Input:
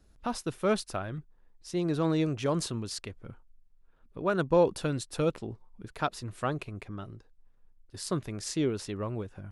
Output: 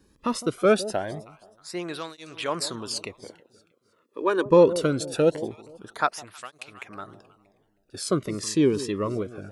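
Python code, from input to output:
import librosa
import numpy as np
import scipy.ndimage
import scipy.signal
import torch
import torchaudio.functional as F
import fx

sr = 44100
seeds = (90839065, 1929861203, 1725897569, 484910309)

y = fx.highpass(x, sr, hz=320.0, slope=24, at=(3.24, 4.46))
y = fx.echo_alternate(y, sr, ms=158, hz=840.0, feedback_pct=53, wet_db=-14)
y = fx.flanger_cancel(y, sr, hz=0.23, depth_ms=1.5)
y = y * 10.0 ** (9.0 / 20.0)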